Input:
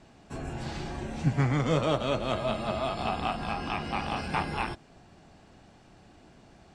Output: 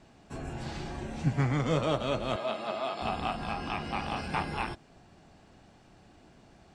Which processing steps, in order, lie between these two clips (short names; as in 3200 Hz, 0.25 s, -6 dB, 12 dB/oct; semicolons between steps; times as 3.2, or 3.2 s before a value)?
2.36–3.02 BPF 310–7200 Hz; gain -2 dB